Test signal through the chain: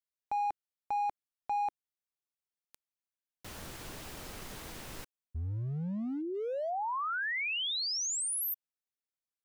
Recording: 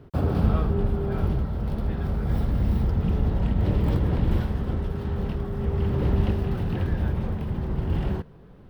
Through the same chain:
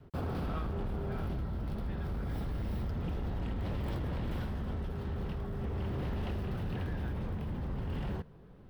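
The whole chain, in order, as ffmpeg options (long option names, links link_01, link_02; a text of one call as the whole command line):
ffmpeg -i in.wav -filter_complex "[0:a]adynamicequalizer=threshold=0.00794:dfrequency=340:dqfactor=2.9:tfrequency=340:tqfactor=2.9:attack=5:release=100:ratio=0.375:range=2:mode=cutabove:tftype=bell,acrossover=split=990[link_01][link_02];[link_01]volume=27dB,asoftclip=hard,volume=-27dB[link_03];[link_03][link_02]amix=inputs=2:normalize=0,volume=-6dB" out.wav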